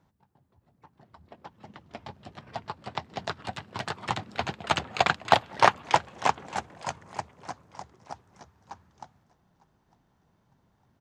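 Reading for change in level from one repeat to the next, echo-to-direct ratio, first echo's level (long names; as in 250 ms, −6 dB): −9.0 dB, −22.5 dB, −23.0 dB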